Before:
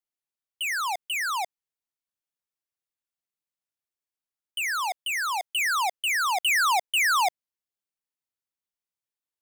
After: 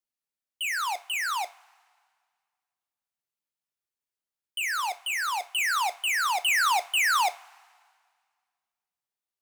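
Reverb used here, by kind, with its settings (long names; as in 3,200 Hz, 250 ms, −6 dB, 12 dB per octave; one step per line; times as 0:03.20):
coupled-rooms reverb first 0.25 s, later 1.9 s, from −22 dB, DRR 9 dB
level −1.5 dB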